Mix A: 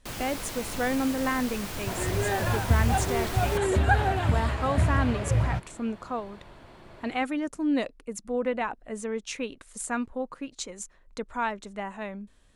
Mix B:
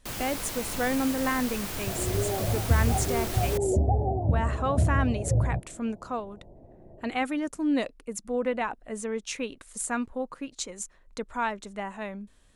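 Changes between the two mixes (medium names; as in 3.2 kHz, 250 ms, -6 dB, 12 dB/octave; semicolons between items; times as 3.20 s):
second sound: add steep low-pass 740 Hz 48 dB/octave; master: add treble shelf 8.1 kHz +5.5 dB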